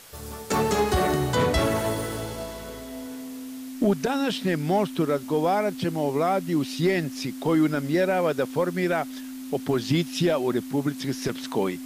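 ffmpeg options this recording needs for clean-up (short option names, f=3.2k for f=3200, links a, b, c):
-af "bandreject=f=260:w=30,afwtdn=0.0045"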